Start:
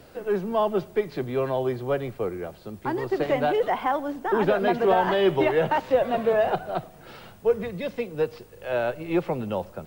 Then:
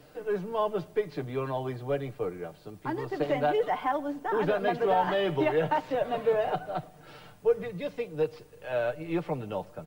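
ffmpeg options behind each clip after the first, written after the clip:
-af "aecho=1:1:6.7:0.6,volume=0.501"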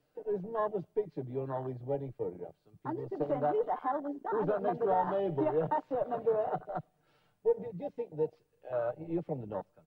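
-af "afwtdn=0.0316,volume=0.631"

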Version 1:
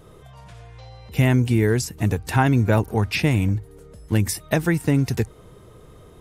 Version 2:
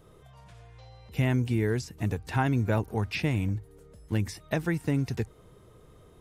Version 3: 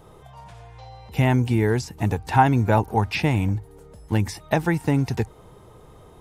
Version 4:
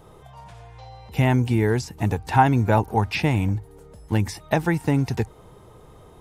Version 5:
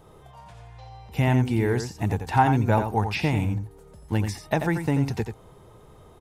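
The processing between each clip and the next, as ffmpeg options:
-filter_complex "[0:a]acrossover=split=6100[s0][s1];[s1]acompressor=threshold=0.00631:ratio=4:attack=1:release=60[s2];[s0][s2]amix=inputs=2:normalize=0,volume=0.398"
-af "equalizer=f=850:w=3.1:g=10.5,volume=2"
-af anull
-af "aecho=1:1:87:0.398,volume=0.708"

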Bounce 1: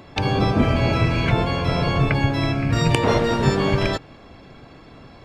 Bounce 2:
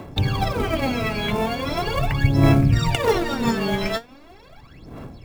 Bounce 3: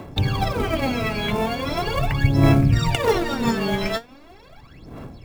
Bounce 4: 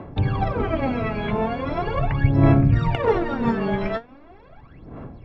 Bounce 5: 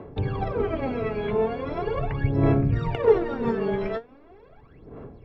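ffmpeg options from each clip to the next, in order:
-filter_complex "[0:a]aphaser=in_gain=1:out_gain=1:delay=4.8:decay=0.8:speed=0.4:type=sinusoidal,acrossover=split=350|3700[s0][s1][s2];[s1]acrusher=bits=4:mode=log:mix=0:aa=0.000001[s3];[s0][s3][s2]amix=inputs=3:normalize=0,volume=0.501"
-af anull
-af "lowpass=1800"
-af "equalizer=f=430:w=3.9:g=11,volume=0.501"

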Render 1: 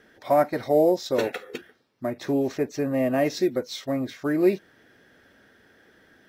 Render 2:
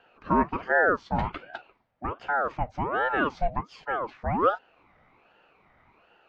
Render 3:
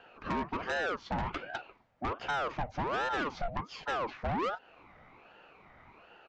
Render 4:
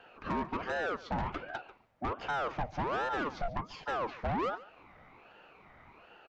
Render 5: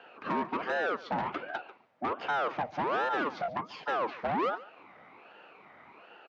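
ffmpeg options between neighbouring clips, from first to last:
-af "lowpass=2000,aeval=exprs='val(0)*sin(2*PI*740*n/s+740*0.55/1.3*sin(2*PI*1.3*n/s))':c=same"
-af "acompressor=threshold=0.0447:ratio=12,aresample=16000,asoftclip=type=tanh:threshold=0.0251,aresample=44100,volume=1.58"
-filter_complex "[0:a]acrossover=split=1600[s0][s1];[s1]alimiter=level_in=4.73:limit=0.0631:level=0:latency=1:release=299,volume=0.211[s2];[s0][s2]amix=inputs=2:normalize=0,aecho=1:1:141:0.119"
-af "highpass=220,lowpass=4700,volume=1.5"

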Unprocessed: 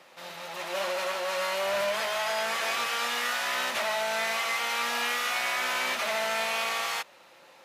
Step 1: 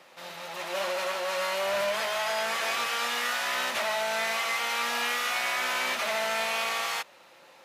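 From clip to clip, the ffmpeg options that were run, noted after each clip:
-af "acontrast=42,volume=0.531"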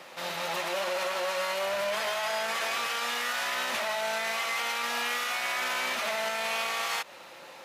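-af "alimiter=level_in=1.78:limit=0.0631:level=0:latency=1:release=106,volume=0.562,volume=2.24"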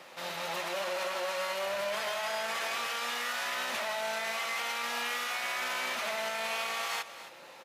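-af "aecho=1:1:266:0.2,volume=0.668"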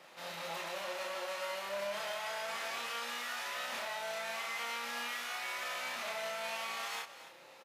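-filter_complex "[0:a]asplit=2[s0][s1];[s1]adelay=30,volume=0.75[s2];[s0][s2]amix=inputs=2:normalize=0,volume=0.422"

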